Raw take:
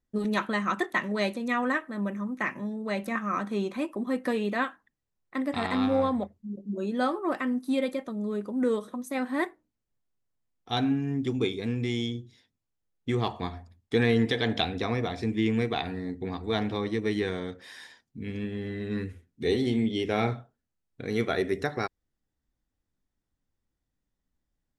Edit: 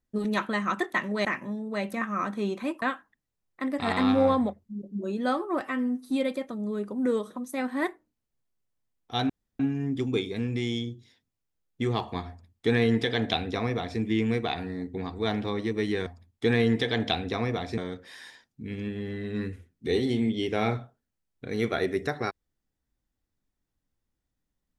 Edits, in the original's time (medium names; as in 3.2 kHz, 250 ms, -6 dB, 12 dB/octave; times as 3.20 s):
1.25–2.39 s: delete
3.96–4.56 s: delete
5.60–6.22 s: gain +3 dB
7.35–7.68 s: stretch 1.5×
10.87 s: insert room tone 0.30 s
13.56–15.27 s: copy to 17.34 s